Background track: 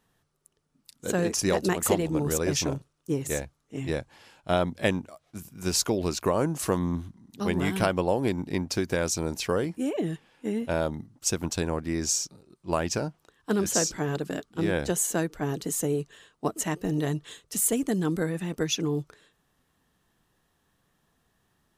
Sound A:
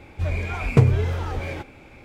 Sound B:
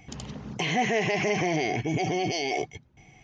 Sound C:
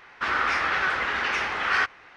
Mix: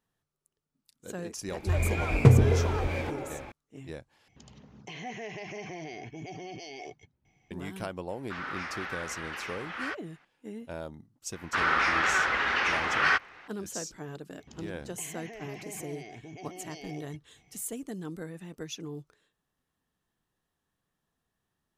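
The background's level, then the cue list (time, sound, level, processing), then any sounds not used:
background track −12 dB
0:01.48: mix in A −2 dB + echo through a band-pass that steps 133 ms, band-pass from 290 Hz, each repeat 0.7 octaves, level −1 dB
0:04.28: overwrite with B −14.5 dB
0:08.09: mix in C −13 dB
0:11.32: mix in C −1 dB
0:14.39: mix in B −11.5 dB + downward compressor 3 to 1, threshold −32 dBFS

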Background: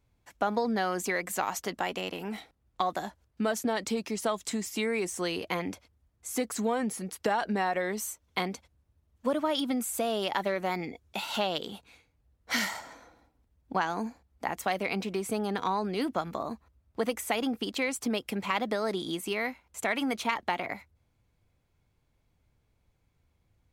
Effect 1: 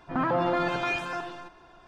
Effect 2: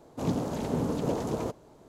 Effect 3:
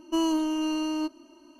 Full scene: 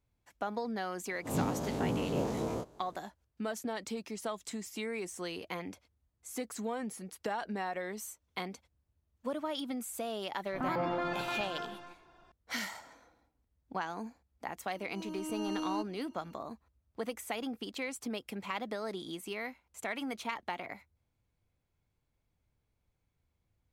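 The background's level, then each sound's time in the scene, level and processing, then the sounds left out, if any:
background −8 dB
0:01.10: mix in 2 −7.5 dB + every bin's largest magnitude spread in time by 60 ms
0:10.45: mix in 1 −8 dB
0:14.75: mix in 3 −7.5 dB + volume swells 713 ms

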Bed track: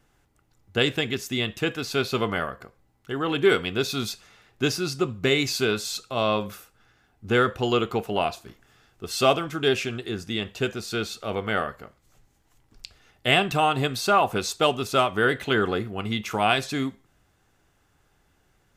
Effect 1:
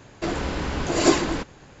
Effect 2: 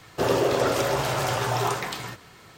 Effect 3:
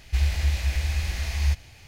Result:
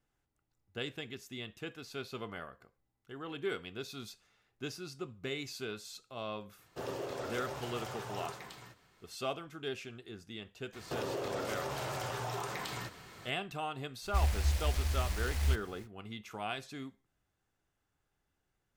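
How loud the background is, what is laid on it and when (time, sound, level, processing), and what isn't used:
bed track −17 dB
0:06.58: mix in 2 −17.5 dB
0:10.73: mix in 2 −3 dB + downward compressor 4 to 1, threshold −33 dBFS
0:14.01: mix in 3 −7 dB, fades 0.05 s + short delay modulated by noise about 2,400 Hz, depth 0.091 ms
not used: 1

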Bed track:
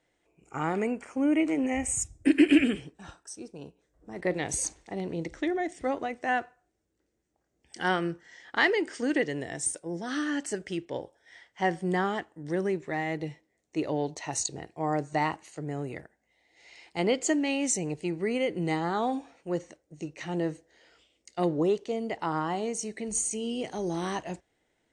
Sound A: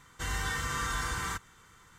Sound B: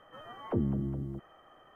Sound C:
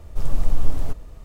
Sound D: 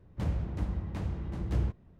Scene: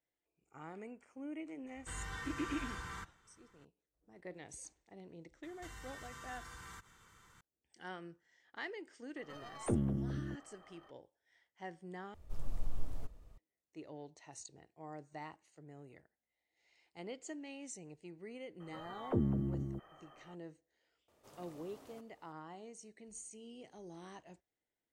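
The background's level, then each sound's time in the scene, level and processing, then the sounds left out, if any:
bed track −20 dB
0:01.67: mix in A −10.5 dB + low-pass filter 3,900 Hz 6 dB per octave
0:05.43: mix in A −6 dB + downward compressor 4 to 1, threshold −44 dBFS
0:09.16: mix in B −3.5 dB + stylus tracing distortion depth 0.21 ms
0:12.14: overwrite with C −17.5 dB
0:18.60: mix in B −2.5 dB
0:21.08: mix in C −17.5 dB + high-pass filter 310 Hz
not used: D

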